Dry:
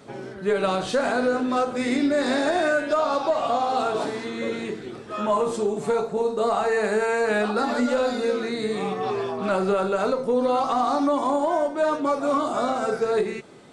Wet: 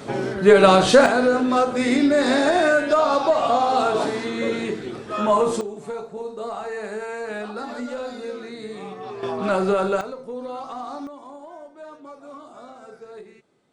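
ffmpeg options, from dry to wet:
-af "asetnsamples=n=441:p=0,asendcmd='1.06 volume volume 4dB;5.61 volume volume -8dB;9.23 volume volume 2dB;10.01 volume volume -10.5dB;11.07 volume volume -18dB',volume=10.5dB"

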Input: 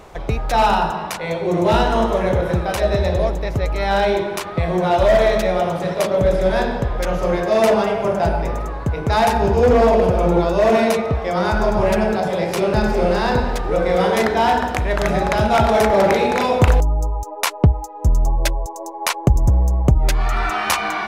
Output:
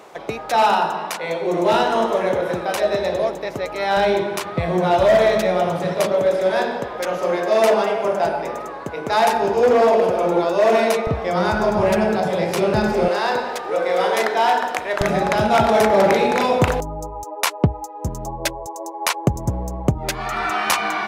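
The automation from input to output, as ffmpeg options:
-af "asetnsamples=n=441:p=0,asendcmd='3.97 highpass f 110;6.13 highpass f 300;11.07 highpass f 100;13.08 highpass f 440;15.01 highpass f 130',highpass=270"

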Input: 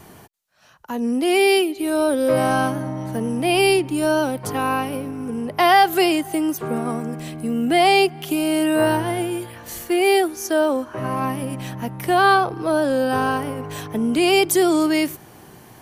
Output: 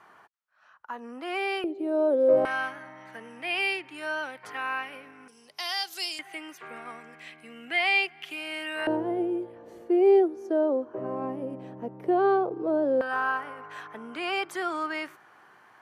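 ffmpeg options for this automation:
-af "asetnsamples=n=441:p=0,asendcmd='1.64 bandpass f 490;2.45 bandpass f 1900;5.28 bandpass f 5300;6.19 bandpass f 2100;8.87 bandpass f 430;13.01 bandpass f 1400',bandpass=f=1.3k:t=q:w=2.3:csg=0"

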